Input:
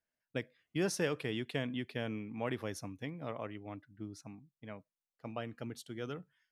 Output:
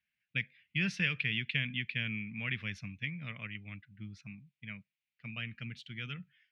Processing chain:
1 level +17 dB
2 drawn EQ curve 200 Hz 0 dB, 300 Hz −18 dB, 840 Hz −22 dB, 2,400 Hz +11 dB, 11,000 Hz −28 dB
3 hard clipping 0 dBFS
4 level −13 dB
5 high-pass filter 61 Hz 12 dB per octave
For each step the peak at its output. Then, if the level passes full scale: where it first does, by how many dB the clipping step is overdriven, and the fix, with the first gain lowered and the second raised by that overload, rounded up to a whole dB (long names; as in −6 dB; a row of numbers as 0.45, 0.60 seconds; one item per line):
−3.0, −2.0, −2.0, −15.0, −14.5 dBFS
no step passes full scale